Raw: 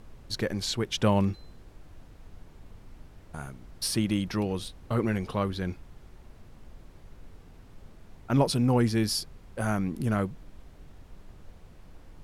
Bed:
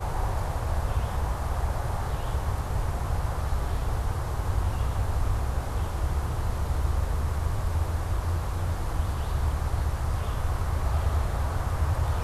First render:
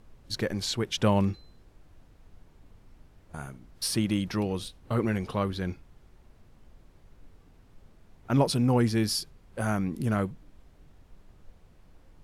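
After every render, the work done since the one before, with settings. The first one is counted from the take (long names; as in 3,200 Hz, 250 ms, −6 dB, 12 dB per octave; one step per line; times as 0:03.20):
noise reduction from a noise print 6 dB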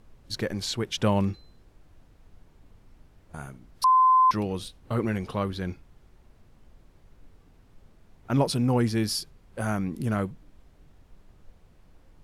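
0:03.84–0:04.31: beep over 1,030 Hz −15 dBFS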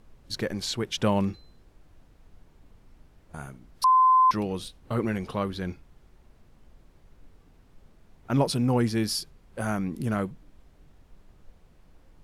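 parametric band 100 Hz −4.5 dB 0.28 octaves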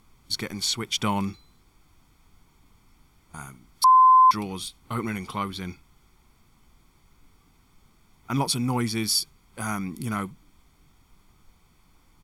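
spectral tilt +2 dB per octave
comb filter 0.9 ms, depth 63%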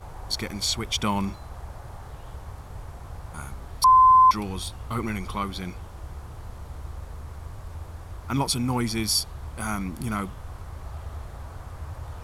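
mix in bed −11 dB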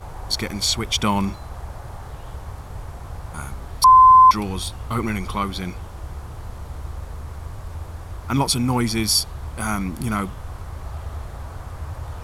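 level +5 dB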